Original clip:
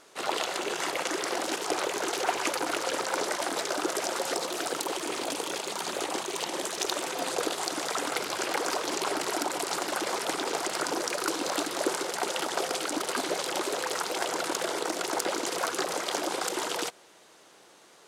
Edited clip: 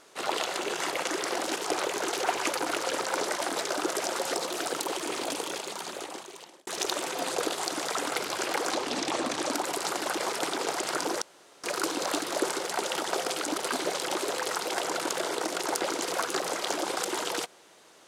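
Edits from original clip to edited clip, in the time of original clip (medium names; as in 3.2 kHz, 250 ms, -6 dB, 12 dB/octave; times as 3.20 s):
5.34–6.67 s: fade out
8.71–9.38 s: speed 83%
11.08 s: insert room tone 0.42 s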